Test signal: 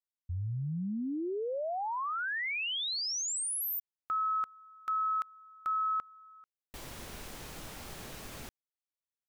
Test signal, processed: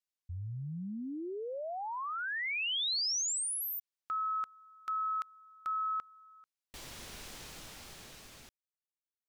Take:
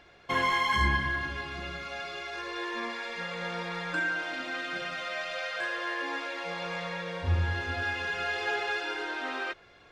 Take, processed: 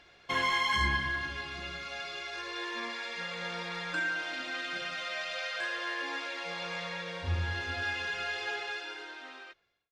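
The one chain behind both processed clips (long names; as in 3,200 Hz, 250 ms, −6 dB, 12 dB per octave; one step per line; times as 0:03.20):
fade-out on the ending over 1.97 s
parametric band 4,700 Hz +7 dB 2.6 octaves
level −5 dB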